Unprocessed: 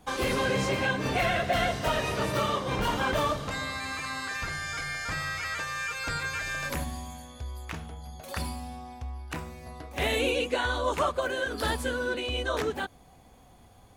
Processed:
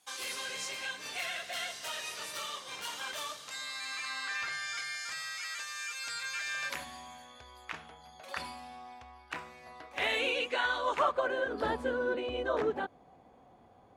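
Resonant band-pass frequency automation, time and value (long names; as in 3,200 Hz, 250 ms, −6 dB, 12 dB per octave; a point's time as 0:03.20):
resonant band-pass, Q 0.6
0:03.50 7,700 Hz
0:04.38 2,700 Hz
0:05.15 6,600 Hz
0:06.11 6,600 Hz
0:07.08 1,800 Hz
0:10.82 1,800 Hz
0:11.51 550 Hz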